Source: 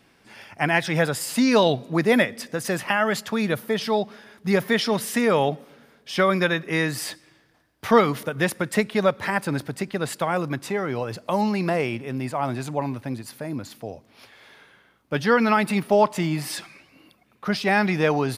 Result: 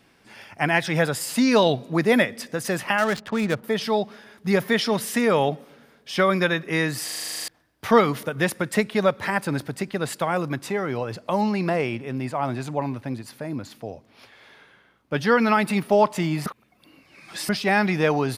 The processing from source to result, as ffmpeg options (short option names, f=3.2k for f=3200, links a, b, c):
-filter_complex "[0:a]asettb=1/sr,asplit=3[a][b][c];[a]atrim=end=2.984[d];[b]atrim=start=2.98:end=3.64,asetpts=PTS-STARTPTS,afade=t=in:d=0.004:c=qsin,afade=t=out:st=0.656:d=0.004:c=qsin,adynamicsmooth=sensitivity=6:basefreq=560[e];[c]atrim=start=3.636[f];[d][e]acrossfade=d=0.004:c1=hsin:c2=qsin[g];[g][f]acrossfade=d=0.004:c1=qsin:c2=hsin,asettb=1/sr,asplit=3[h][i][j];[h]atrim=end=10.974[k];[i]atrim=start=10.97:end=15.18,asetpts=PTS-STARTPTS,afade=t=in:d=0.004:c=qsin,afade=t=out:st=4.206:d=0.004:c=qsin,highshelf=f=7.6k:g=-6.5[l];[j]atrim=start=15.176[m];[k][l]acrossfade=d=0.004:c1=hsin:c2=qsin[n];[n][m]acrossfade=d=0.004:c1=qsin:c2=hsin,asplit=14[o][p][q][r][s][t][u][v][w][x][y][z][aa][ab];[o]atrim=end=7.082[ac];[p]atrim=start=7.038:end=7.082[ad];[q]atrim=start=7.038:end=7.082[ae];[r]atrim=start=7.038:end=7.082[af];[s]atrim=start=7.038:end=7.082[ag];[t]atrim=start=7.038:end=7.082[ah];[u]atrim=start=7.038:end=7.082[ai];[v]atrim=start=7.038:end=7.082[aj];[w]atrim=start=7.038:end=7.082[ak];[x]atrim=start=7.038:end=7.082[al];[y]atrim=start=7.038:end=7.082[am];[z]atrim=start=7.478:end=16.462[an];[aa]atrim=start=16.458:end=17.492,asetpts=PTS-STARTPTS,areverse[ao];[ab]atrim=start=17.488[ap];[ac][ad]acrossfade=d=0.004:c1=hsin:c2=hsin[aq];[aq][ae]acrossfade=d=0.004:c1=hsin:c2=hsin[ar];[ar][af]acrossfade=d=0.004:c1=hsin:c2=hsin[as];[as][ag]acrossfade=d=0.004:c1=hsin:c2=hsin[at];[at][ah]acrossfade=d=0.004:c1=hsin:c2=hsin[au];[au][ai]acrossfade=d=0.004:c1=hsin:c2=hsin[av];[av][aj]acrossfade=d=0.004:c1=hsin:c2=hsin[aw];[aw][ak]acrossfade=d=0.004:c1=hsin:c2=hsin[ax];[ax][al]acrossfade=d=0.004:c1=hsin:c2=hsin[ay];[ay][am]acrossfade=d=0.004:c1=hsin:c2=hsin[az];[az][an]acrossfade=d=0.004:c1=hsin:c2=hsin[ba];[ba][ao]acrossfade=d=0.004:c1=hsin:c2=hsin[bb];[bb][ap]acrossfade=d=0.004:c1=hsin:c2=hsin"